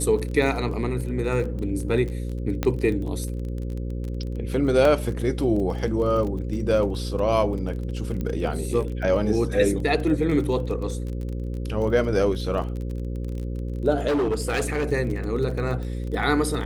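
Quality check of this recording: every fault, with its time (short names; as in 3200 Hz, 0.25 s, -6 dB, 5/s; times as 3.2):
buzz 60 Hz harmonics 9 -29 dBFS
crackle 30/s -31 dBFS
2.63 pop -10 dBFS
4.85 gap 2.7 ms
8.21 pop -18 dBFS
14.07–14.92 clipped -19.5 dBFS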